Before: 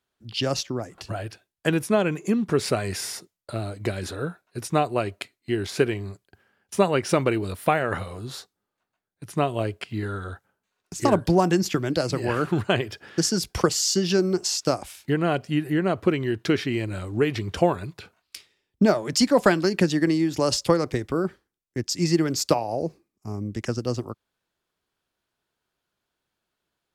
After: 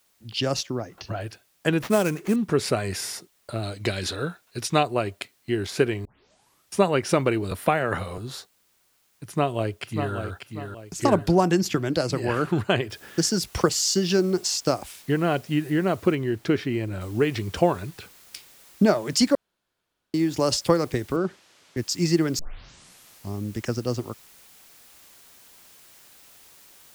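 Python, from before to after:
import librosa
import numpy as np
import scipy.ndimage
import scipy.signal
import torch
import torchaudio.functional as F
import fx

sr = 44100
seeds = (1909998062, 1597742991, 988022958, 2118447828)

y = fx.brickwall_lowpass(x, sr, high_hz=6600.0, at=(0.7, 1.21))
y = fx.sample_hold(y, sr, seeds[0], rate_hz=8700.0, jitter_pct=20, at=(1.82, 2.36))
y = fx.peak_eq(y, sr, hz=3900.0, db=9.5, octaves=1.8, at=(3.63, 4.83))
y = fx.band_squash(y, sr, depth_pct=40, at=(7.51, 8.18))
y = fx.echo_throw(y, sr, start_s=9.24, length_s=0.91, ms=590, feedback_pct=35, wet_db=-7.0)
y = fx.noise_floor_step(y, sr, seeds[1], at_s=12.9, before_db=-66, after_db=-52, tilt_db=0.0)
y = fx.high_shelf(y, sr, hz=2100.0, db=-7.5, at=(16.15, 17.01))
y = fx.bandpass_edges(y, sr, low_hz=110.0, high_hz=5700.0, at=(21.16, 21.77))
y = fx.edit(y, sr, fx.tape_start(start_s=6.05, length_s=0.72),
    fx.room_tone_fill(start_s=19.35, length_s=0.79),
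    fx.tape_start(start_s=22.39, length_s=0.96), tone=tone)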